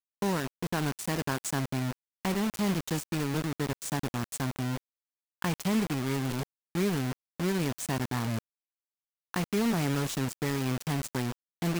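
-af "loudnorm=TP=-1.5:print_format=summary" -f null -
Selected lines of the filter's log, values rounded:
Input Integrated:    -31.6 LUFS
Input True Peak:     -14.5 dBTP
Input LRA:             1.1 LU
Input Threshold:     -41.6 LUFS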